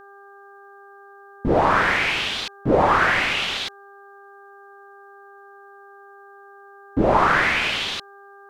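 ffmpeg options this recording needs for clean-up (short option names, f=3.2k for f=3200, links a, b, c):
-af "bandreject=f=398.8:t=h:w=4,bandreject=f=797.6:t=h:w=4,bandreject=f=1.1964k:t=h:w=4,bandreject=f=1.5952k:t=h:w=4"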